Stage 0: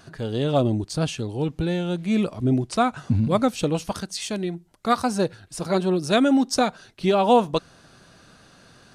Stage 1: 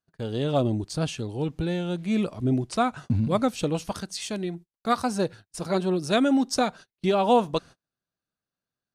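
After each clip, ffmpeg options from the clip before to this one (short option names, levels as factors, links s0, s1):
-af "agate=range=0.0141:threshold=0.0126:ratio=16:detection=peak,volume=0.708"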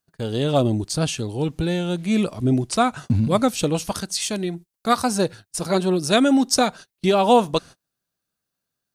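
-af "highshelf=f=5400:g=9,volume=1.68"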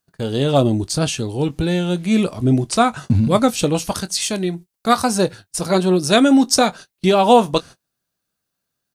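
-filter_complex "[0:a]asplit=2[s0][s1];[s1]adelay=22,volume=0.2[s2];[s0][s2]amix=inputs=2:normalize=0,volume=1.5"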